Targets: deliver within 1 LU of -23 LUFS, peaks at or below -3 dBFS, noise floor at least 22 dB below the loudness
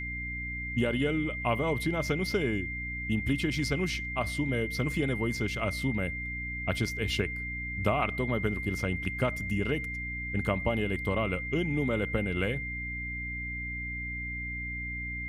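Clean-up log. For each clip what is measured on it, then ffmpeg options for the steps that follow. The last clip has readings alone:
hum 60 Hz; harmonics up to 300 Hz; hum level -37 dBFS; steady tone 2100 Hz; tone level -35 dBFS; loudness -31.0 LUFS; peak -14.0 dBFS; loudness target -23.0 LUFS
-> -af "bandreject=f=60:t=h:w=6,bandreject=f=120:t=h:w=6,bandreject=f=180:t=h:w=6,bandreject=f=240:t=h:w=6,bandreject=f=300:t=h:w=6"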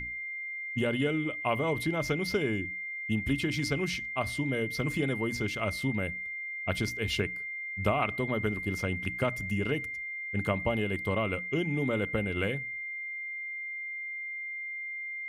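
hum none; steady tone 2100 Hz; tone level -35 dBFS
-> -af "bandreject=f=2.1k:w=30"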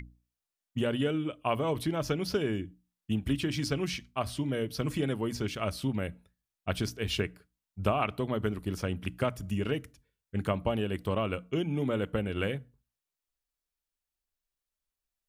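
steady tone none; loudness -32.5 LUFS; peak -14.5 dBFS; loudness target -23.0 LUFS
-> -af "volume=9.5dB"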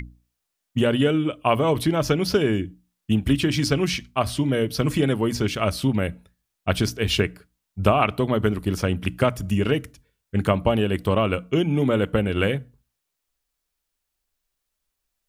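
loudness -23.0 LUFS; peak -5.0 dBFS; noise floor -80 dBFS

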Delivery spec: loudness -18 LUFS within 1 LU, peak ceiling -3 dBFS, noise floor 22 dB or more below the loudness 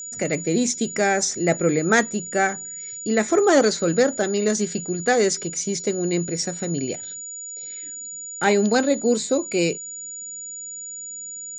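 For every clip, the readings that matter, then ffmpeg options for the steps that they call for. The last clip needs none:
steady tone 6900 Hz; tone level -32 dBFS; loudness -22.5 LUFS; peak -3.5 dBFS; loudness target -18.0 LUFS
-> -af "bandreject=f=6.9k:w=30"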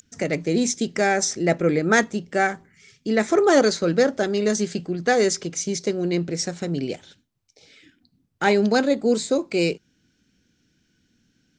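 steady tone none; loudness -22.0 LUFS; peak -4.0 dBFS; loudness target -18.0 LUFS
-> -af "volume=4dB,alimiter=limit=-3dB:level=0:latency=1"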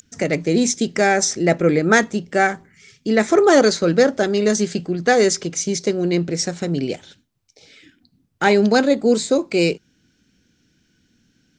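loudness -18.0 LUFS; peak -3.0 dBFS; noise floor -64 dBFS

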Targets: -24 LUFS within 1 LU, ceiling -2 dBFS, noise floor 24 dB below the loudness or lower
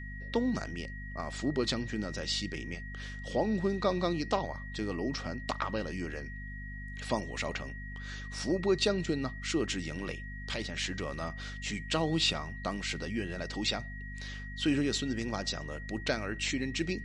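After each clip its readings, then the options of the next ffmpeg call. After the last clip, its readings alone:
hum 50 Hz; harmonics up to 250 Hz; hum level -40 dBFS; steady tone 1900 Hz; tone level -45 dBFS; loudness -34.0 LUFS; peak -13.5 dBFS; loudness target -24.0 LUFS
-> -af "bandreject=f=50:t=h:w=4,bandreject=f=100:t=h:w=4,bandreject=f=150:t=h:w=4,bandreject=f=200:t=h:w=4,bandreject=f=250:t=h:w=4"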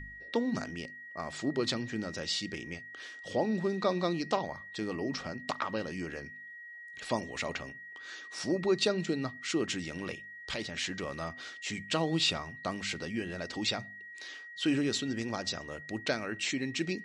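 hum none; steady tone 1900 Hz; tone level -45 dBFS
-> -af "bandreject=f=1.9k:w=30"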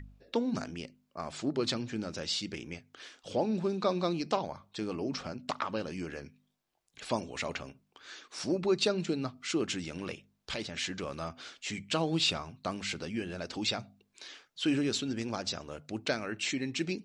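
steady tone none; loudness -34.0 LUFS; peak -14.0 dBFS; loudness target -24.0 LUFS
-> -af "volume=10dB"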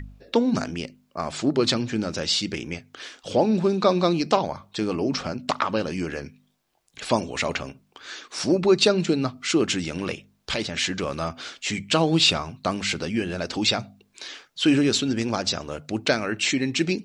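loudness -24.0 LUFS; peak -4.0 dBFS; noise floor -66 dBFS

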